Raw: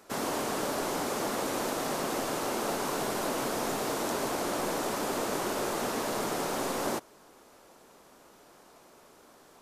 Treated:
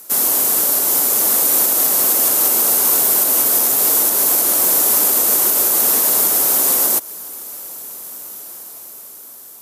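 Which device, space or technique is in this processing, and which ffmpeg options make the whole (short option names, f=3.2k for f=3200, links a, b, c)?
FM broadcast chain: -filter_complex "[0:a]highpass=62,dynaudnorm=f=690:g=5:m=8dB,acrossover=split=240|3300[a][b][c];[a]acompressor=threshold=-44dB:ratio=4[d];[b]acompressor=threshold=-26dB:ratio=4[e];[c]acompressor=threshold=-36dB:ratio=4[f];[d][e][f]amix=inputs=3:normalize=0,aemphasis=mode=production:type=50fm,alimiter=limit=-17dB:level=0:latency=1:release=226,asoftclip=type=hard:threshold=-19dB,lowpass=f=15k:w=0.5412,lowpass=f=15k:w=1.3066,aemphasis=mode=production:type=50fm,volume=3.5dB"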